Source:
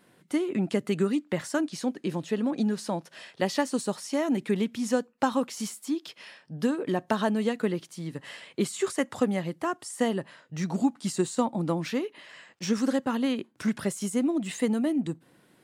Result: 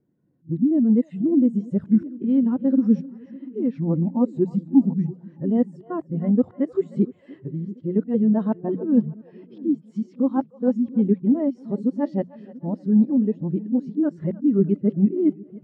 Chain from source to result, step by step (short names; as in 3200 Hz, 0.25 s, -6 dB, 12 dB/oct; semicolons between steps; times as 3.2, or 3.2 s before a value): whole clip reversed; tilt -3.5 dB/oct; in parallel at -2 dB: compressor, threshold -30 dBFS, peak gain reduction 17 dB; on the sum: LPF 7800 Hz 12 dB/oct; notches 60/120/180 Hz; on a send: split-band echo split 440 Hz, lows 0.689 s, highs 0.307 s, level -12.5 dB; on the sum: spectral expander 1.5:1